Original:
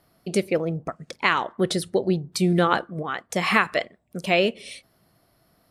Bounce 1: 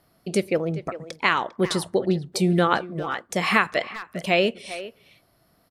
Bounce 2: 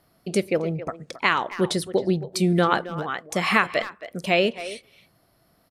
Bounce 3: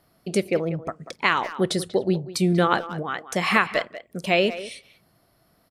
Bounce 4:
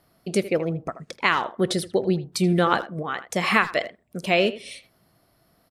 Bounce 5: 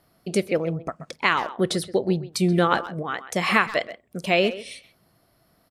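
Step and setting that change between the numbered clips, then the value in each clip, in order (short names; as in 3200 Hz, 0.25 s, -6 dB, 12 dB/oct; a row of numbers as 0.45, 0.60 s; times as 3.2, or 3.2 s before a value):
speakerphone echo, time: 400, 270, 190, 80, 130 ms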